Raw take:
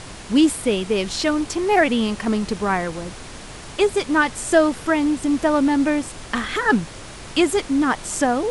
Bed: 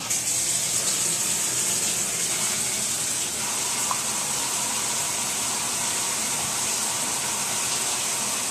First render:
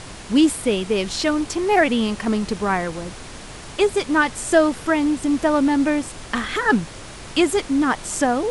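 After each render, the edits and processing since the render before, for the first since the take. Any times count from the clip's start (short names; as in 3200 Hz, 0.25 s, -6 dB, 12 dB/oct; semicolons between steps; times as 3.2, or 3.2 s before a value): nothing audible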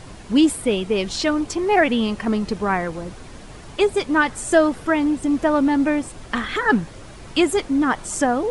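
denoiser 8 dB, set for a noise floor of -37 dBFS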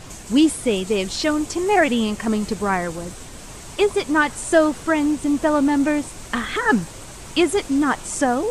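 add bed -16 dB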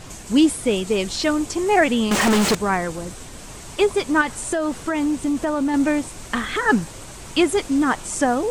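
2.11–2.55 overdrive pedal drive 38 dB, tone 3800 Hz, clips at -10 dBFS; 4.21–5.74 compressor 12:1, threshold -17 dBFS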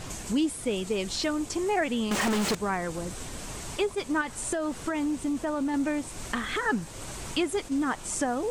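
compressor 2:1, threshold -32 dBFS, peak gain reduction 11.5 dB; attack slew limiter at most 420 dB/s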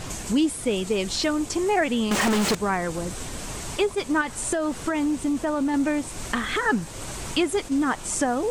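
gain +4.5 dB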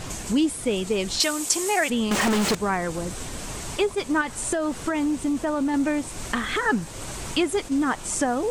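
1.2–1.9 RIAA curve recording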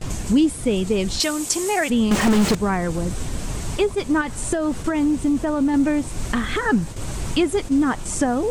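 gate with hold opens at -25 dBFS; low shelf 260 Hz +11 dB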